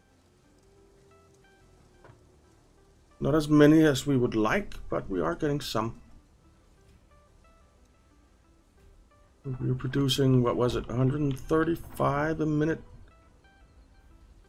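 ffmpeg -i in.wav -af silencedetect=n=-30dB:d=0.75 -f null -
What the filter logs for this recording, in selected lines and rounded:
silence_start: 0.00
silence_end: 3.22 | silence_duration: 3.22
silence_start: 5.90
silence_end: 9.47 | silence_duration: 3.57
silence_start: 12.76
silence_end: 14.49 | silence_duration: 1.73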